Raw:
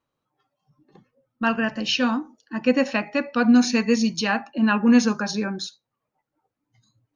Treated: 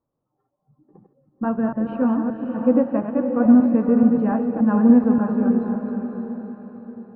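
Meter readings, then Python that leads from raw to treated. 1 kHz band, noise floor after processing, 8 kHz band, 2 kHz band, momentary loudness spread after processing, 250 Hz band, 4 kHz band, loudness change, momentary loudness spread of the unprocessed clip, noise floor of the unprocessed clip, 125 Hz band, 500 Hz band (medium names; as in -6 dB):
-1.5 dB, -78 dBFS, no reading, -13.5 dB, 16 LU, +4.5 dB, under -30 dB, +2.5 dB, 11 LU, -83 dBFS, +4.5 dB, +3.0 dB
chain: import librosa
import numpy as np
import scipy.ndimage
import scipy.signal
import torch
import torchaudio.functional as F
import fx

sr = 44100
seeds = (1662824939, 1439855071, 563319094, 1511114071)

p1 = fx.reverse_delay(x, sr, ms=144, wet_db=-6)
p2 = scipy.signal.sosfilt(scipy.signal.bessel(4, 710.0, 'lowpass', norm='mag', fs=sr, output='sos'), p1)
p3 = p2 + fx.echo_diffused(p2, sr, ms=551, feedback_pct=43, wet_db=-6, dry=0)
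y = F.gain(torch.from_numpy(p3), 2.5).numpy()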